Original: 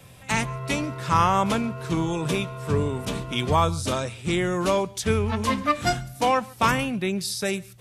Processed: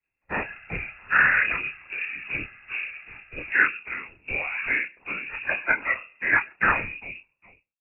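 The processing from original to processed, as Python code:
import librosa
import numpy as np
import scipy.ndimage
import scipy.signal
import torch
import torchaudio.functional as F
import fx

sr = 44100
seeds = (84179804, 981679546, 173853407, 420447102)

y = fx.fade_out_tail(x, sr, length_s=1.05)
y = scipy.signal.sosfilt(scipy.signal.butter(2, 190.0, 'highpass', fs=sr, output='sos'), y)
y = fx.peak_eq(y, sr, hz=480.0, db=-12.0, octaves=0.21)
y = fx.whisperise(y, sr, seeds[0])
y = fx.chorus_voices(y, sr, voices=6, hz=0.44, base_ms=28, depth_ms=4.6, mix_pct=30)
y = fx.freq_invert(y, sr, carrier_hz=2700)
y = fx.band_widen(y, sr, depth_pct=100)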